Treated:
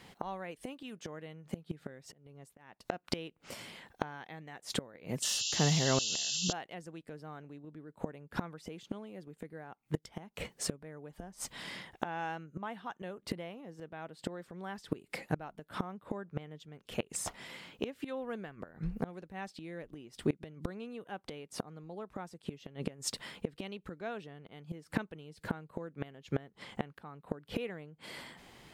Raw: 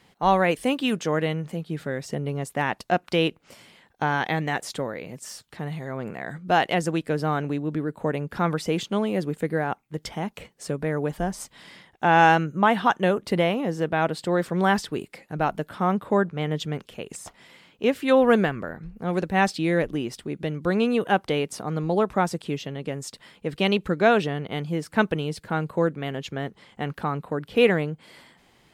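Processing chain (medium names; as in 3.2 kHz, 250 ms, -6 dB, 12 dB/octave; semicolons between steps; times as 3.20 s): inverted gate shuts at -22 dBFS, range -25 dB; 1.92–2.87 s: slow attack 323 ms; 5.22–6.53 s: painted sound noise 2.6–7.5 kHz -38 dBFS; trim +3 dB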